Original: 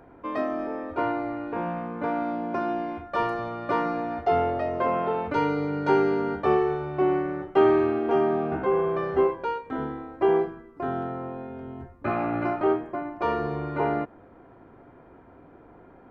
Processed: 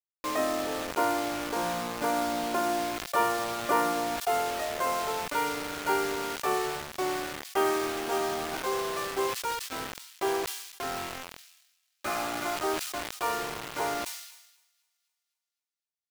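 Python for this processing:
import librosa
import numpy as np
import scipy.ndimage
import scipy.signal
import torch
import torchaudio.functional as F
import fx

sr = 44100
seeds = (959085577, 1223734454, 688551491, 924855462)

y = fx.highpass(x, sr, hz=fx.steps((0.0, 440.0), (4.16, 1300.0)), slope=6)
y = fx.quant_dither(y, sr, seeds[0], bits=6, dither='none')
y = fx.echo_wet_highpass(y, sr, ms=258, feedback_pct=53, hz=3700.0, wet_db=-21)
y = fx.sustainer(y, sr, db_per_s=58.0)
y = y * 10.0 ** (1.5 / 20.0)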